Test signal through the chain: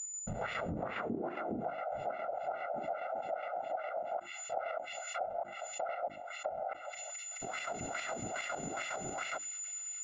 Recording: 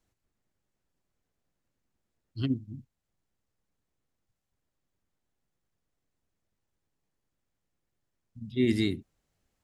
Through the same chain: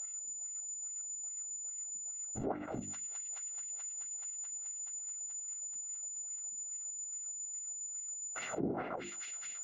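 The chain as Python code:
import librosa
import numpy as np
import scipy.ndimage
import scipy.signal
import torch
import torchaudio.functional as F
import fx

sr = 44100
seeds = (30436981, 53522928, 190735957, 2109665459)

y = np.r_[np.sort(x[:len(x) // 64 * 64].reshape(-1, 64), axis=1).ravel(), x[len(x) // 64 * 64:]]
y = fx.wah_lfo(y, sr, hz=2.4, low_hz=210.0, high_hz=2500.0, q=2.5)
y = fx.whisperise(y, sr, seeds[0])
y = fx.hum_notches(y, sr, base_hz=50, count=7)
y = y + 10.0 ** (-58.0 / 20.0) * np.sin(2.0 * np.pi * 7000.0 * np.arange(len(y)) / sr)
y = fx.chopper(y, sr, hz=7.3, depth_pct=60, duty_pct=40)
y = fx.high_shelf(y, sr, hz=8700.0, db=-7.0)
y = fx.echo_wet_highpass(y, sr, ms=215, feedback_pct=85, hz=3500.0, wet_db=-19.5)
y = fx.env_lowpass_down(y, sr, base_hz=720.0, full_db=-37.5)
y = fx.rider(y, sr, range_db=4, speed_s=0.5)
y = fx.low_shelf(y, sr, hz=93.0, db=-9.5)
y = fx.env_flatten(y, sr, amount_pct=70)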